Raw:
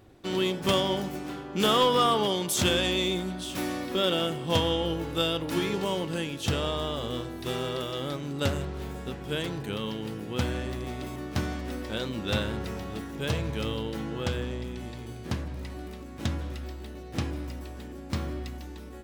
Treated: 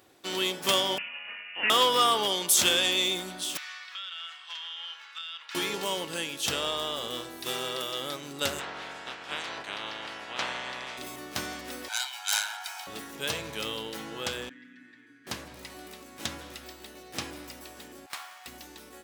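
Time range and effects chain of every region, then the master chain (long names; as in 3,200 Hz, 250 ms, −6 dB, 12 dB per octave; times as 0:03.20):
0:00.98–0:01.70: high-pass filter 600 Hz + voice inversion scrambler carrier 3,200 Hz
0:03.57–0:05.55: high-pass filter 1,300 Hz 24 dB per octave + downward compressor 12 to 1, threshold −34 dBFS + high-frequency loss of the air 170 metres
0:08.58–0:10.97: ceiling on every frequency bin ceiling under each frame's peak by 27 dB + head-to-tape spacing loss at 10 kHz 27 dB + double-tracking delay 15 ms −10.5 dB
0:11.88–0:12.87: phase distortion by the signal itself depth 0.19 ms + Butterworth high-pass 720 Hz 72 dB per octave + comb filter 1.3 ms, depth 84%
0:14.49–0:15.27: pair of resonant band-passes 670 Hz, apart 2.7 octaves + comb filter 6.6 ms, depth 85%
0:18.06–0:18.47: Butterworth high-pass 680 Hz 72 dB per octave + windowed peak hold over 5 samples
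whole clip: high-pass filter 760 Hz 6 dB per octave; high-shelf EQ 4,500 Hz +7.5 dB; level +1.5 dB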